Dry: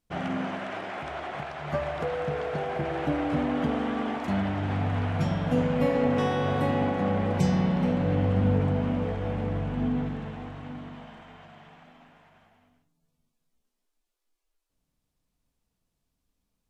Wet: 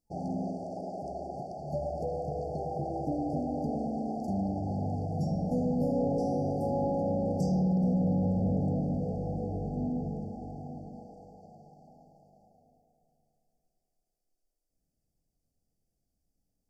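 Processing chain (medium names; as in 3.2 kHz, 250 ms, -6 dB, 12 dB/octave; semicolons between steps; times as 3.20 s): bucket-brigade echo 108 ms, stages 2048, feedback 77%, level -6 dB; saturation -18.5 dBFS, distortion -15 dB; FFT band-reject 840–4400 Hz; trim -3.5 dB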